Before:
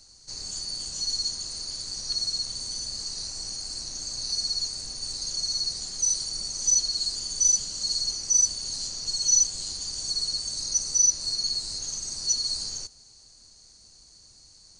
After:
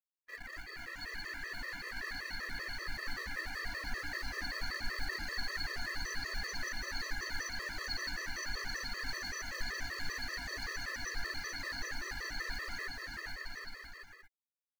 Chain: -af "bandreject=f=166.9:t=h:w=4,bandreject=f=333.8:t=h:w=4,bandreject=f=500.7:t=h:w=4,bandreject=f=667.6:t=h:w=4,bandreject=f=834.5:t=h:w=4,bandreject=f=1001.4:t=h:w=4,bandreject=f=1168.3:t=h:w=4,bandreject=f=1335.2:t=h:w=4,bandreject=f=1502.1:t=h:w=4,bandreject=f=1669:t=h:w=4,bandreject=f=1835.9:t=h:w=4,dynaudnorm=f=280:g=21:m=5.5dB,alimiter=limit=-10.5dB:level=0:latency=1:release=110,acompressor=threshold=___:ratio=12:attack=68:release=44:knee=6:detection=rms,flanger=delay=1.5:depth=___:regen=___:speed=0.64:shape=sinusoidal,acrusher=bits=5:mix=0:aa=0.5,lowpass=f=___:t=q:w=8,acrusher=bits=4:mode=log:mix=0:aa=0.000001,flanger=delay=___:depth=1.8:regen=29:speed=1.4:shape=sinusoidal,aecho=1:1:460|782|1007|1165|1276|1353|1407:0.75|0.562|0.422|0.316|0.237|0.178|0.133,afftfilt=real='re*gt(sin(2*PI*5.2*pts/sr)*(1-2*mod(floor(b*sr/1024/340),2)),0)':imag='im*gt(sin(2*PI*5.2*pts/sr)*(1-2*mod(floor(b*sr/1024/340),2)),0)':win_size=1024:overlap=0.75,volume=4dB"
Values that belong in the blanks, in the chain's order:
-24dB, 2.2, 81, 1800, 2.4